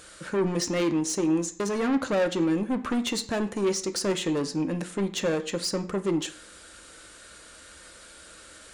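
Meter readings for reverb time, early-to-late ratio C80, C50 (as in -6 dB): 0.50 s, 18.0 dB, 14.5 dB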